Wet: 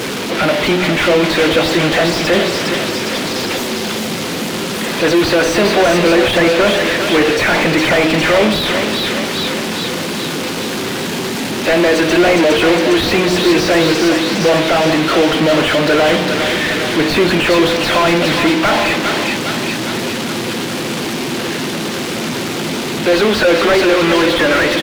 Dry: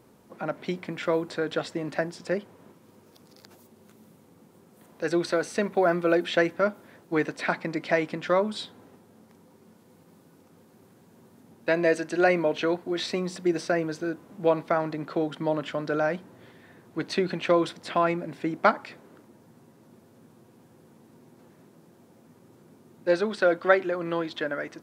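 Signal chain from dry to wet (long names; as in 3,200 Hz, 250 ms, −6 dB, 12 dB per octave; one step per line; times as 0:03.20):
spectral magnitudes quantised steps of 15 dB
hum removal 45.73 Hz, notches 25
in parallel at −1 dB: brickwall limiter −17.5 dBFS, peak gain reduction 10 dB
on the sum: power curve on the samples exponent 0.35
meter weighting curve D
on a send: repeating echo 407 ms, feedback 56%, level −10.5 dB
on the sum: slew-rate limiting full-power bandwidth 350 Hz
level +2 dB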